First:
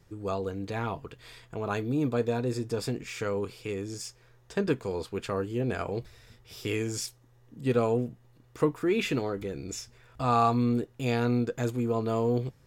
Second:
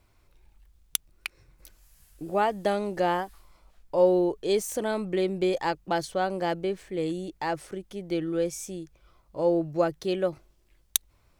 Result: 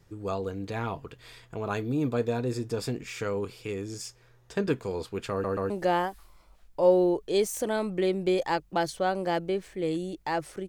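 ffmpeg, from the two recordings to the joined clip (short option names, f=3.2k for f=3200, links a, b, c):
-filter_complex "[0:a]apad=whole_dur=10.68,atrim=end=10.68,asplit=3[a][b][c];[a]atrim=end=5.442[d];[b]atrim=start=5.308:end=5.442[e];[c]atrim=start=5.308:end=5.442[f];[1:a]atrim=start=2.848:end=7.83[g];[d][e]acrossfade=d=0.004:c1=hsin:c2=hsin[h];[h][f]acrossfade=d=0.004:c1=hsin:c2=hsin[i];[i][g]acrossfade=d=0.004:c1=hsin:c2=hsin"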